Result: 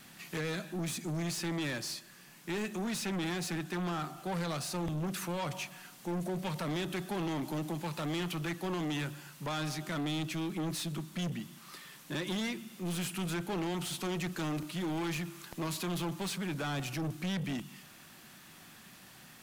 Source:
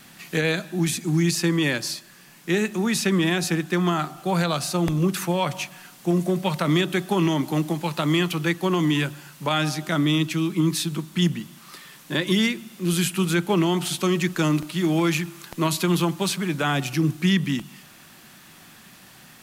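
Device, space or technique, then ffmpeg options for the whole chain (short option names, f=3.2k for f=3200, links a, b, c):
saturation between pre-emphasis and de-emphasis: -af "highshelf=f=9.4k:g=8.5,asoftclip=type=tanh:threshold=-26dB,highshelf=f=9.4k:g=-8.5,volume=-6dB"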